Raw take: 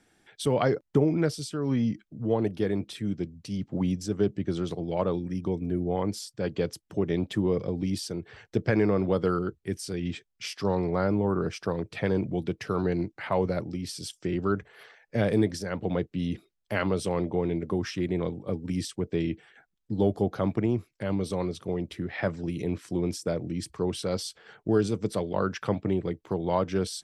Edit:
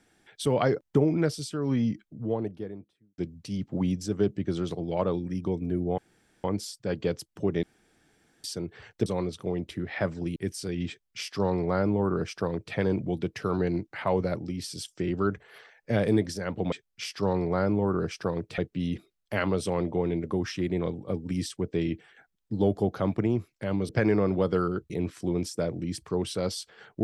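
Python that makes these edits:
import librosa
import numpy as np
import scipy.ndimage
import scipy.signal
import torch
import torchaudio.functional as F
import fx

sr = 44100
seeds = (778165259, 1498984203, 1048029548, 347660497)

y = fx.studio_fade_out(x, sr, start_s=1.82, length_s=1.36)
y = fx.edit(y, sr, fx.insert_room_tone(at_s=5.98, length_s=0.46),
    fx.room_tone_fill(start_s=7.17, length_s=0.81),
    fx.swap(start_s=8.6, length_s=1.01, other_s=21.28, other_length_s=1.3),
    fx.duplicate(start_s=10.14, length_s=1.86, to_s=15.97), tone=tone)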